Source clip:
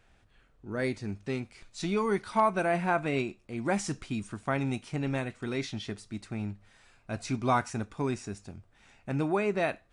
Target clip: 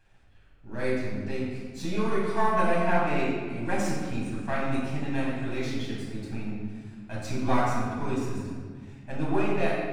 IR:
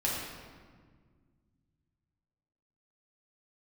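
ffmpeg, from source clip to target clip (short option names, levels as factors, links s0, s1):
-filter_complex "[0:a]aeval=exprs='if(lt(val(0),0),0.447*val(0),val(0))':c=same[s0];[1:a]atrim=start_sample=2205[s1];[s0][s1]afir=irnorm=-1:irlink=0,volume=0.668"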